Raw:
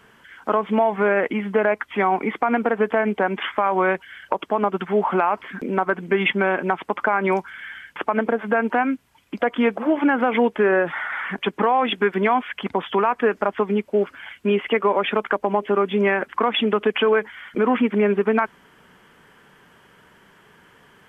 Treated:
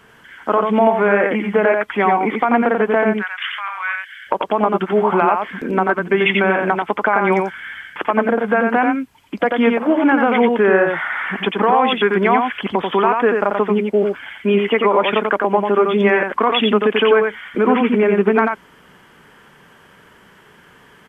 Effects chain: 3.15–4.27 s: high-pass 1.4 kHz 24 dB/octave; delay 89 ms -4 dB; trim +3.5 dB

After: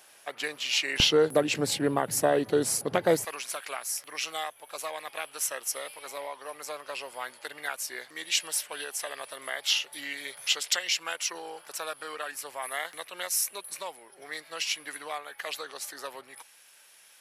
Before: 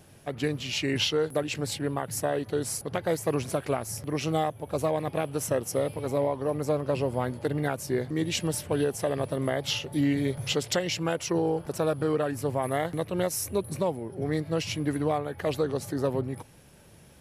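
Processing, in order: high-pass 930 Hz 12 dB/octave, from 1.00 s 200 Hz, from 3.25 s 1.5 kHz; trim +4.5 dB

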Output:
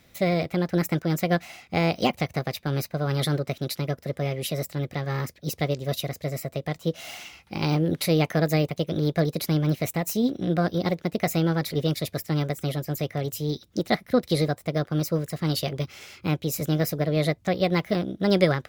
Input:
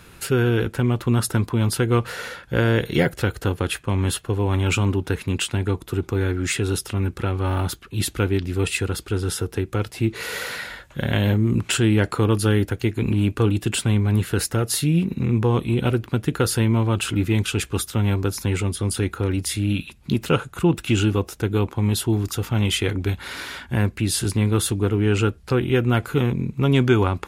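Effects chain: wide varispeed 1.46×; upward expansion 1.5:1, over -33 dBFS; trim -1.5 dB

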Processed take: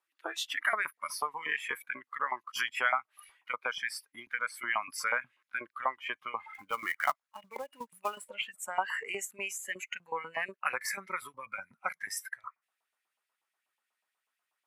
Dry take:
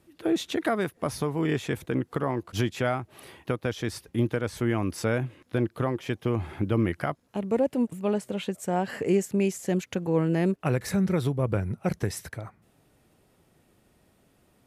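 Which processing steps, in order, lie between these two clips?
LFO high-pass saw up 8.2 Hz 890–2500 Hz; spectral noise reduction 18 dB; 6.54–8.27 s: short-mantissa float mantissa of 2-bit

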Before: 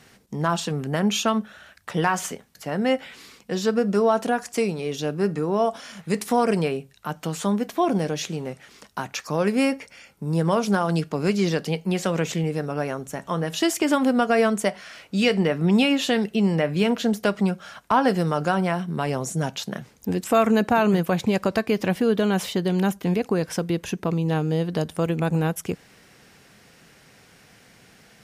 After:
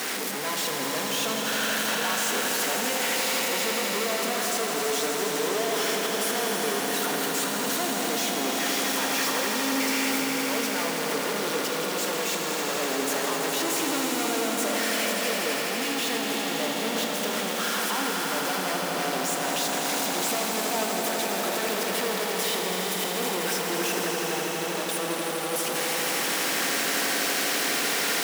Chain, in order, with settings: one-bit comparator; high-pass 260 Hz 24 dB/octave; echo with a slow build-up 82 ms, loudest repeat 5, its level -8 dB; on a send at -8 dB: reverberation, pre-delay 3 ms; on the sum: trim -6 dB

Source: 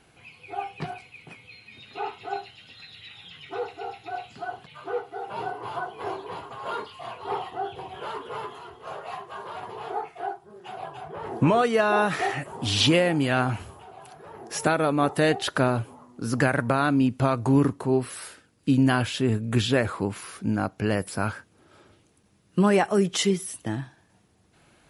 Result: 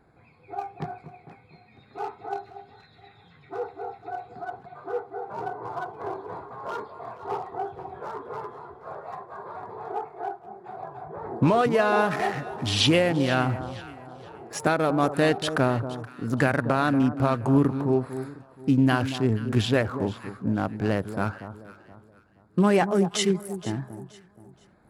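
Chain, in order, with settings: local Wiener filter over 15 samples; on a send: echo whose repeats swap between lows and highs 237 ms, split 1.2 kHz, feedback 55%, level -11 dB

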